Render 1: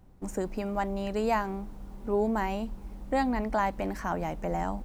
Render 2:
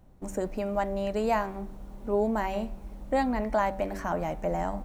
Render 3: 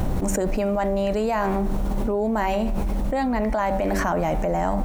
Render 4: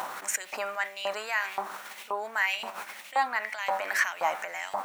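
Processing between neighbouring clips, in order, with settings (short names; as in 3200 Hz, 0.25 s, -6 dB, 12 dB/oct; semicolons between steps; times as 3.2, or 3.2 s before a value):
bell 600 Hz +6.5 dB 0.27 oct; notch 4900 Hz, Q 20; de-hum 96.39 Hz, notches 29
fast leveller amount 100%
LFO high-pass saw up 1.9 Hz 960–2900 Hz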